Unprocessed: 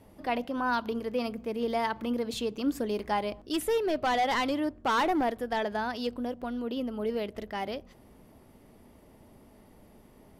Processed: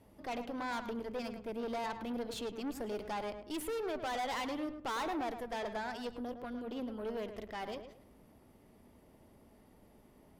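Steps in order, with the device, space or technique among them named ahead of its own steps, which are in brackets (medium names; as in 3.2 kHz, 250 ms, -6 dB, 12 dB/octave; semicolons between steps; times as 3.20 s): rockabilly slapback (valve stage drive 31 dB, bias 0.6; tape echo 107 ms, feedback 29%, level -7.5 dB, low-pass 2.3 kHz); trim -3.5 dB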